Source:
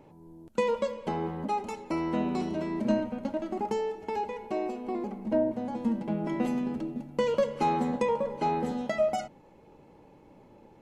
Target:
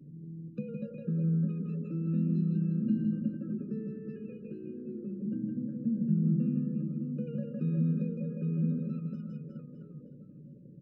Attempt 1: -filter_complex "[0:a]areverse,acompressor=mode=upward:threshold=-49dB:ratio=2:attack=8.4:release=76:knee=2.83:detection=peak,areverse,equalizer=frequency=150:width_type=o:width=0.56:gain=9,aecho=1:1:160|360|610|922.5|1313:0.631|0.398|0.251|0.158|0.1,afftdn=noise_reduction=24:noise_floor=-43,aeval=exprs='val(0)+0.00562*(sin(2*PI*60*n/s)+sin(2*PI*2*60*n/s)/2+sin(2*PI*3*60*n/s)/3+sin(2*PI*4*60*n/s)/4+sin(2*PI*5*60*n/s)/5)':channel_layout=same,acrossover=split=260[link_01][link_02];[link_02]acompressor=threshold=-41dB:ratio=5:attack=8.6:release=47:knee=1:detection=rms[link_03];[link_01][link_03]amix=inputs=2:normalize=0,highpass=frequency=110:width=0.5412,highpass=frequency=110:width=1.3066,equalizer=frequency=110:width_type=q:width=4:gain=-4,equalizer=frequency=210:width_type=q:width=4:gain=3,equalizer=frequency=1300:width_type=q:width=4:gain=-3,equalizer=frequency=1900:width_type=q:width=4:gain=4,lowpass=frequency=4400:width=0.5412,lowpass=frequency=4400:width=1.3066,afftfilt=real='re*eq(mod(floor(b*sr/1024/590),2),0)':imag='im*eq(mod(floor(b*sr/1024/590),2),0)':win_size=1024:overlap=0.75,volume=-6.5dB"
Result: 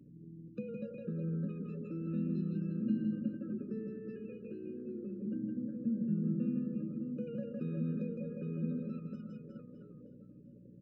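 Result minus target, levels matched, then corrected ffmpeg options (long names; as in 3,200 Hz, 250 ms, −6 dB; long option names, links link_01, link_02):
125 Hz band −3.0 dB
-filter_complex "[0:a]areverse,acompressor=mode=upward:threshold=-49dB:ratio=2:attack=8.4:release=76:knee=2.83:detection=peak,areverse,equalizer=frequency=150:width_type=o:width=0.56:gain=21,aecho=1:1:160|360|610|922.5|1313:0.631|0.398|0.251|0.158|0.1,afftdn=noise_reduction=24:noise_floor=-43,aeval=exprs='val(0)+0.00562*(sin(2*PI*60*n/s)+sin(2*PI*2*60*n/s)/2+sin(2*PI*3*60*n/s)/3+sin(2*PI*4*60*n/s)/4+sin(2*PI*5*60*n/s)/5)':channel_layout=same,acrossover=split=260[link_01][link_02];[link_02]acompressor=threshold=-41dB:ratio=5:attack=8.6:release=47:knee=1:detection=rms[link_03];[link_01][link_03]amix=inputs=2:normalize=0,highpass=frequency=110:width=0.5412,highpass=frequency=110:width=1.3066,equalizer=frequency=110:width_type=q:width=4:gain=-4,equalizer=frequency=210:width_type=q:width=4:gain=3,equalizer=frequency=1300:width_type=q:width=4:gain=-3,equalizer=frequency=1900:width_type=q:width=4:gain=4,lowpass=frequency=4400:width=0.5412,lowpass=frequency=4400:width=1.3066,afftfilt=real='re*eq(mod(floor(b*sr/1024/590),2),0)':imag='im*eq(mod(floor(b*sr/1024/590),2),0)':win_size=1024:overlap=0.75,volume=-6.5dB"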